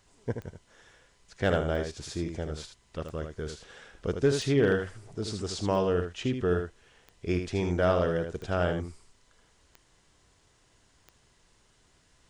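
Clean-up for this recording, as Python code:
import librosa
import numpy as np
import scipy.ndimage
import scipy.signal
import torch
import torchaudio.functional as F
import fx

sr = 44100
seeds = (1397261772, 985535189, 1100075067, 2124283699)

y = fx.fix_declip(x, sr, threshold_db=-15.0)
y = fx.fix_declick_ar(y, sr, threshold=10.0)
y = fx.fix_echo_inverse(y, sr, delay_ms=78, level_db=-7.0)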